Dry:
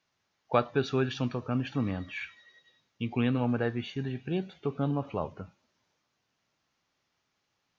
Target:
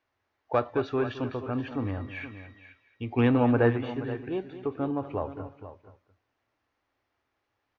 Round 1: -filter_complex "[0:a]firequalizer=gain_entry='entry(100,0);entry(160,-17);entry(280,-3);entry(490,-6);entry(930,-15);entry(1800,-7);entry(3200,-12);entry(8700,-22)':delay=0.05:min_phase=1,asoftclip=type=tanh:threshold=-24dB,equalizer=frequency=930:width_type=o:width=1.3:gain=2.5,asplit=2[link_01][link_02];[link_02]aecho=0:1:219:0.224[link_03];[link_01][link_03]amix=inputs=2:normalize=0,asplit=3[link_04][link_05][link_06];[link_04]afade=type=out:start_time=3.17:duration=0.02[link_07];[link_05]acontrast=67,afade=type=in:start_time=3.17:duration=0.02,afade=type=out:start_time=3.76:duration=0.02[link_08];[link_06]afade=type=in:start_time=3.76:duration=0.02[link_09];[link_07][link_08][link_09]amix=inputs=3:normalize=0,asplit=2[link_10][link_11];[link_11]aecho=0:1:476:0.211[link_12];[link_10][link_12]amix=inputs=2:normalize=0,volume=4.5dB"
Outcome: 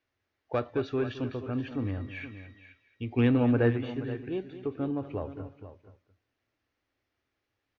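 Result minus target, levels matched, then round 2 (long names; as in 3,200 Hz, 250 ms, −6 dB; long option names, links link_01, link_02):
1,000 Hz band −5.5 dB
-filter_complex "[0:a]firequalizer=gain_entry='entry(100,0);entry(160,-17);entry(280,-3);entry(490,-6);entry(930,-15);entry(1800,-7);entry(3200,-12);entry(8700,-22)':delay=0.05:min_phase=1,asoftclip=type=tanh:threshold=-24dB,equalizer=frequency=930:width_type=o:width=1.3:gain=11.5,asplit=2[link_01][link_02];[link_02]aecho=0:1:219:0.224[link_03];[link_01][link_03]amix=inputs=2:normalize=0,asplit=3[link_04][link_05][link_06];[link_04]afade=type=out:start_time=3.17:duration=0.02[link_07];[link_05]acontrast=67,afade=type=in:start_time=3.17:duration=0.02,afade=type=out:start_time=3.76:duration=0.02[link_08];[link_06]afade=type=in:start_time=3.76:duration=0.02[link_09];[link_07][link_08][link_09]amix=inputs=3:normalize=0,asplit=2[link_10][link_11];[link_11]aecho=0:1:476:0.211[link_12];[link_10][link_12]amix=inputs=2:normalize=0,volume=4.5dB"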